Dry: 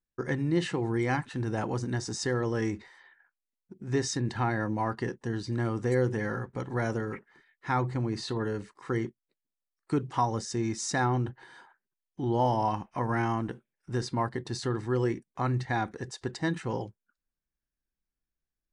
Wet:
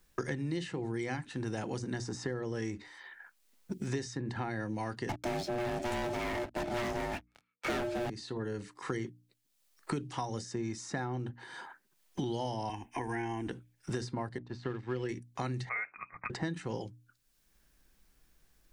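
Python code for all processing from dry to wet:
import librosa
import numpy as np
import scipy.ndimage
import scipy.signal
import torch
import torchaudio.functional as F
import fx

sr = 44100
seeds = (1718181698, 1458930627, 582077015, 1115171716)

y = fx.chain(x, sr, fx.ring_mod(carrier_hz=480.0),
    fx.leveller(passes=5),
    fx.band_widen(depth_pct=40), at=(5.09, 8.1))
y = fx.chain(y, sr, fx.peak_eq(hz=3600.0, db=4.5, octaves=0.34),
    fx.fixed_phaser(hz=850.0, stages=8),
    fx.band_squash(depth_pct=70), at=(12.69, 13.47))
y = fx.chain(y, sr, fx.law_mismatch(coded='A'),
    fx.lowpass(hz=2200.0, slope=12),
    fx.upward_expand(threshold_db=-44.0, expansion=1.5), at=(14.38, 15.09))
y = fx.chain(y, sr, fx.highpass(hz=600.0, slope=24),
    fx.freq_invert(carrier_hz=2900), at=(15.69, 16.3))
y = fx.hum_notches(y, sr, base_hz=60, count=5)
y = fx.dynamic_eq(y, sr, hz=1100.0, q=1.8, threshold_db=-44.0, ratio=4.0, max_db=-6)
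y = fx.band_squash(y, sr, depth_pct=100)
y = y * librosa.db_to_amplitude(-7.5)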